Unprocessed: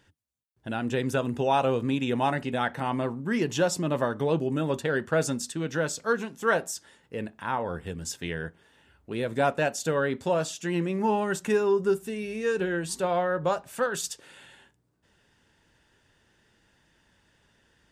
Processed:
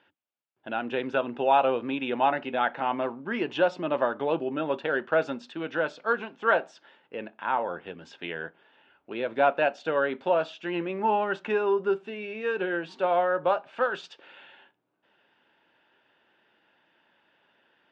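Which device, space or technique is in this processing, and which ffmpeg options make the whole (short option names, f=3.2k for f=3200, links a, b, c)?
phone earpiece: -af "highpass=410,equalizer=f=450:t=q:w=4:g=-5,equalizer=f=1.1k:t=q:w=4:g=-3,equalizer=f=1.9k:t=q:w=4:g=-7,lowpass=f=3k:w=0.5412,lowpass=f=3k:w=1.3066,volume=4.5dB"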